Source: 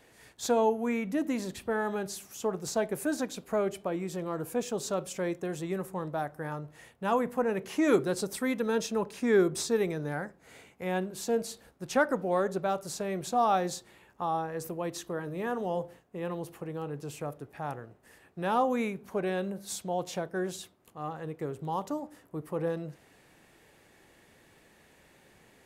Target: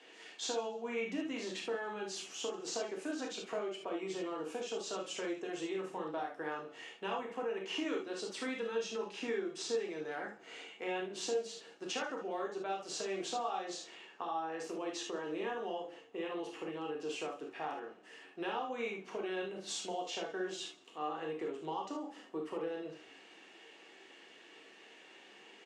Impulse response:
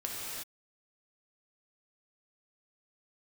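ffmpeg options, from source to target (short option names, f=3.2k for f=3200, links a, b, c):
-filter_complex "[0:a]highpass=f=280:w=0.5412,highpass=f=280:w=1.3066,equalizer=f=410:t=q:w=4:g=3,equalizer=f=590:t=q:w=4:g=-5,equalizer=f=2.9k:t=q:w=4:g=10,lowpass=f=6.9k:w=0.5412,lowpass=f=6.9k:w=1.3066,acompressor=threshold=-38dB:ratio=6,asplit=4[a][b][c][d];[b]adelay=137,afreqshift=-31,volume=-21dB[e];[c]adelay=274,afreqshift=-62,volume=-30.4dB[f];[d]adelay=411,afreqshift=-93,volume=-39.7dB[g];[a][e][f][g]amix=inputs=4:normalize=0[h];[1:a]atrim=start_sample=2205,atrim=end_sample=6615,asetrate=79380,aresample=44100[i];[h][i]afir=irnorm=-1:irlink=0,volume=6.5dB"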